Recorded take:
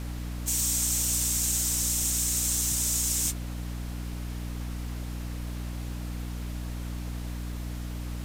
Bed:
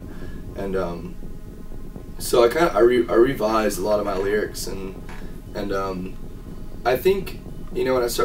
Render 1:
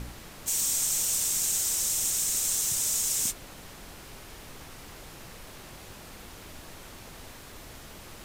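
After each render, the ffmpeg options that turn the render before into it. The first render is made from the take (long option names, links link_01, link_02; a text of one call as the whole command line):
ffmpeg -i in.wav -af "bandreject=frequency=60:width_type=h:width=4,bandreject=frequency=120:width_type=h:width=4,bandreject=frequency=180:width_type=h:width=4,bandreject=frequency=240:width_type=h:width=4,bandreject=frequency=300:width_type=h:width=4" out.wav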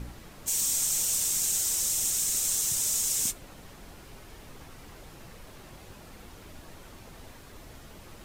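ffmpeg -i in.wav -af "afftdn=noise_reduction=6:noise_floor=-47" out.wav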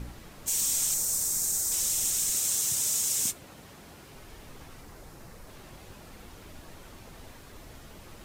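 ffmpeg -i in.wav -filter_complex "[0:a]asettb=1/sr,asplit=3[link_01][link_02][link_03];[link_01]atrim=end=0.944[link_04];[link_02]atrim=start=0.94:end=1.72,asetpts=PTS-STARTPTS,afade=type=in:duration=0.004:curve=qsin,afade=type=out:start_time=0.776:duration=0.004:curve=qsin,equalizer=frequency=3000:width=1.6:gain=-13[link_05];[link_03]atrim=start=1.716[link_06];[link_04][link_05]acrossfade=duration=0.004:curve1=hsin:curve2=qsin[link_07];[link_07][link_06]acrossfade=duration=0.004:curve1=qsin:curve2=hsin,asettb=1/sr,asplit=3[link_08][link_09][link_10];[link_08]atrim=end=2.324[link_11];[link_09]atrim=start=2.32:end=4.15,asetpts=PTS-STARTPTS,afade=type=in:duration=0.004:curve=qsin,afade=type=out:start_time=1.826:duration=0.004:curve=qsin,highpass=73[link_12];[link_10]atrim=start=4.146[link_13];[link_11][link_12]acrossfade=duration=0.004:curve1=hsin:curve2=qsin[link_14];[link_14][link_13]acrossfade=duration=0.004:curve1=qsin:curve2=hsin,asettb=1/sr,asplit=3[link_15][link_16][link_17];[link_15]atrim=end=4.814[link_18];[link_16]atrim=start=4.81:end=5.49,asetpts=PTS-STARTPTS,afade=type=in:duration=0.004:curve=qsin,afade=type=out:start_time=0.676:duration=0.004:curve=qsin,equalizer=frequency=3000:width=1.5:gain=-5.5[link_19];[link_17]atrim=start=5.486[link_20];[link_18][link_19]acrossfade=duration=0.004:curve1=hsin:curve2=qsin[link_21];[link_21][link_20]acrossfade=duration=0.004:curve1=qsin:curve2=hsin" out.wav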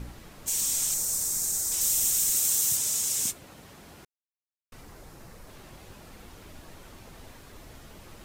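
ffmpeg -i in.wav -filter_complex "[0:a]asettb=1/sr,asplit=3[link_01][link_02][link_03];[link_01]atrim=end=1.814[link_04];[link_02]atrim=start=1.81:end=2.77,asetpts=PTS-STARTPTS,afade=type=in:duration=0.004:curve=qsin,afade=type=out:start_time=0.956:duration=0.004:curve=qsin,equalizer=frequency=16000:width=0.5:gain=7.5[link_05];[link_03]atrim=start=2.766[link_06];[link_04][link_05]acrossfade=duration=0.004:curve1=hsin:curve2=qsin[link_07];[link_07][link_06]acrossfade=duration=0.004:curve1=qsin:curve2=hsin,asplit=3[link_08][link_09][link_10];[link_08]atrim=end=4.05,asetpts=PTS-STARTPTS,afade=type=out:start_time=4.046:duration=0.004:curve=hsin[link_11];[link_09]atrim=start=4.05:end=4.72,asetpts=PTS-STARTPTS,volume=0[link_12];[link_10]atrim=start=4.72,asetpts=PTS-STARTPTS,afade=type=in:duration=0.004:curve=hsin[link_13];[link_11][link_12][link_13]concat=n=3:v=0:a=1" out.wav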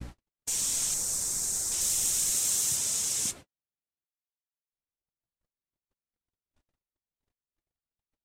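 ffmpeg -i in.wav -af "agate=range=-57dB:threshold=-40dB:ratio=16:detection=peak,lowpass=9500" out.wav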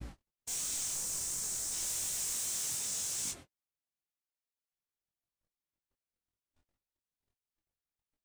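ffmpeg -i in.wav -af "asoftclip=type=hard:threshold=-31dB,flanger=delay=19:depth=4.6:speed=2.8" out.wav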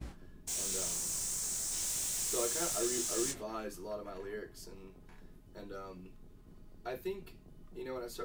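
ffmpeg -i in.wav -i bed.wav -filter_complex "[1:a]volume=-21dB[link_01];[0:a][link_01]amix=inputs=2:normalize=0" out.wav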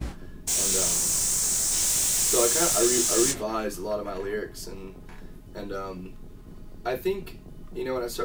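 ffmpeg -i in.wav -af "volume=12dB" out.wav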